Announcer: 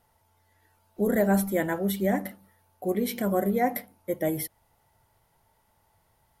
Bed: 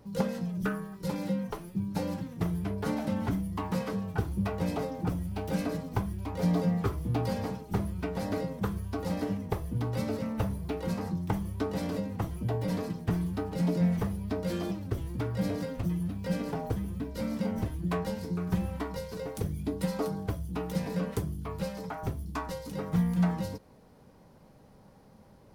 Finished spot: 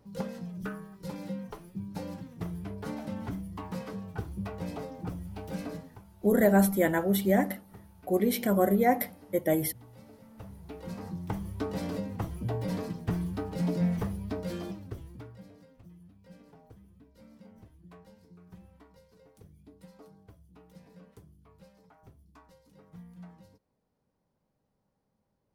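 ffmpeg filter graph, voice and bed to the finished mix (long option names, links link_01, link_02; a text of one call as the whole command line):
ffmpeg -i stem1.wav -i stem2.wav -filter_complex "[0:a]adelay=5250,volume=1dB[link_01];[1:a]volume=13.5dB,afade=type=out:start_time=5.77:duration=0.2:silence=0.177828,afade=type=in:start_time=10.29:duration=1.41:silence=0.105925,afade=type=out:start_time=14.21:duration=1.24:silence=0.0944061[link_02];[link_01][link_02]amix=inputs=2:normalize=0" out.wav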